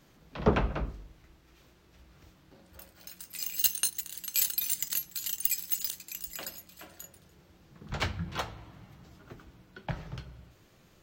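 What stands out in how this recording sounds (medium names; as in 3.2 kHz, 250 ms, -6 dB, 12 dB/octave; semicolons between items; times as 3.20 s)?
noise floor -61 dBFS; spectral tilt -2.5 dB/octave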